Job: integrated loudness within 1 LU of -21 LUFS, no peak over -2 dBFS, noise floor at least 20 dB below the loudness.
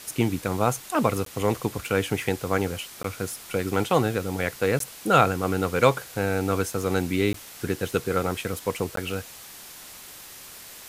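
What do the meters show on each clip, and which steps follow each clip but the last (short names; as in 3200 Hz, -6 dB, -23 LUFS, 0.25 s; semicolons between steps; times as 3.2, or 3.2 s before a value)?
dropouts 5; longest dropout 13 ms; noise floor -44 dBFS; noise floor target -46 dBFS; loudness -26.0 LUFS; peak -3.5 dBFS; loudness target -21.0 LUFS
-> interpolate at 1.25/3.03/4.79/7.33/8.96, 13 ms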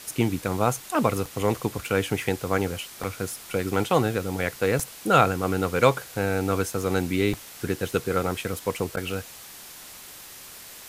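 dropouts 0; noise floor -44 dBFS; noise floor target -46 dBFS
-> denoiser 6 dB, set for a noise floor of -44 dBFS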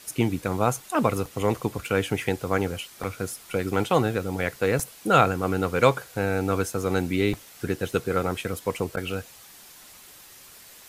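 noise floor -49 dBFS; loudness -26.0 LUFS; peak -3.5 dBFS; loudness target -21.0 LUFS
-> gain +5 dB; limiter -2 dBFS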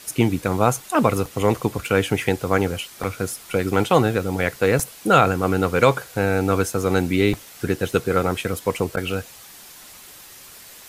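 loudness -21.5 LUFS; peak -2.0 dBFS; noise floor -44 dBFS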